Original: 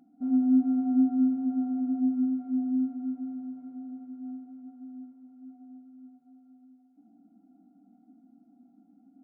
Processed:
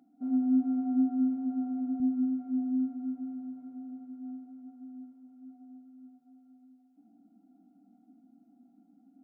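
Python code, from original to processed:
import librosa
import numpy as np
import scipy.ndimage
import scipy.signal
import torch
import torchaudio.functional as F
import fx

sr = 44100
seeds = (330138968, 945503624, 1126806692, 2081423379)

y = fx.highpass(x, sr, hz=fx.steps((0.0, 210.0), (2.0, 120.0)), slope=12)
y = F.gain(torch.from_numpy(y), -2.0).numpy()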